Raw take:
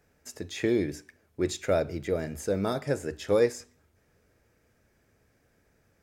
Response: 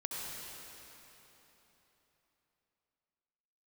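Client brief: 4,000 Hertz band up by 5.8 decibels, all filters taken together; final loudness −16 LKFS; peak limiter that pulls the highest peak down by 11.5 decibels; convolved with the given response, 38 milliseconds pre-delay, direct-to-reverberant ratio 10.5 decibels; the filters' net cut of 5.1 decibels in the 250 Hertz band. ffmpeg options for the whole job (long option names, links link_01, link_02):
-filter_complex "[0:a]equalizer=frequency=250:width_type=o:gain=-8,equalizer=frequency=4000:width_type=o:gain=7,alimiter=level_in=1dB:limit=-24dB:level=0:latency=1,volume=-1dB,asplit=2[link_01][link_02];[1:a]atrim=start_sample=2205,adelay=38[link_03];[link_02][link_03]afir=irnorm=-1:irlink=0,volume=-13dB[link_04];[link_01][link_04]amix=inputs=2:normalize=0,volume=20dB"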